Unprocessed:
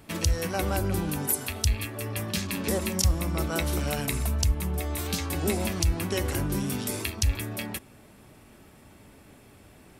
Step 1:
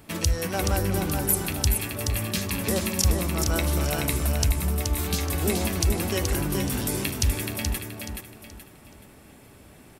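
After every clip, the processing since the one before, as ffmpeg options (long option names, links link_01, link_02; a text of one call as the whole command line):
ffmpeg -i in.wav -filter_complex "[0:a]highshelf=frequency=10000:gain=4,asplit=2[link_01][link_02];[link_02]aecho=0:1:426|852|1278|1704:0.562|0.186|0.0612|0.0202[link_03];[link_01][link_03]amix=inputs=2:normalize=0,volume=1dB" out.wav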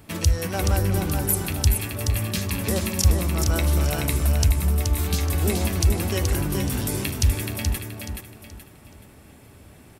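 ffmpeg -i in.wav -af "equalizer=frequency=85:width_type=o:width=1.2:gain=6" out.wav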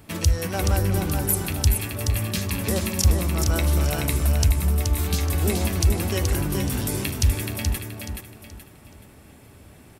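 ffmpeg -i in.wav -af "asoftclip=type=hard:threshold=-9.5dB" out.wav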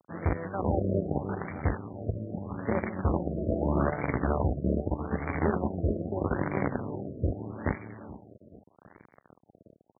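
ffmpeg -i in.wav -af "acrusher=bits=4:dc=4:mix=0:aa=0.000001,highpass=120,lowpass=7400,afftfilt=real='re*lt(b*sr/1024,650*pow(2400/650,0.5+0.5*sin(2*PI*0.8*pts/sr)))':imag='im*lt(b*sr/1024,650*pow(2400/650,0.5+0.5*sin(2*PI*0.8*pts/sr)))':win_size=1024:overlap=0.75,volume=-2dB" out.wav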